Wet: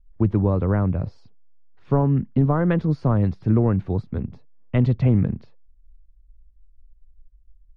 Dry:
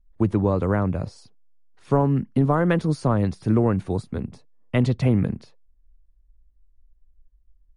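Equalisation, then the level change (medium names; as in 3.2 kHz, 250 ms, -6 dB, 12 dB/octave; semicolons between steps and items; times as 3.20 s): distance through air 220 m; bass shelf 160 Hz +8 dB; -2.0 dB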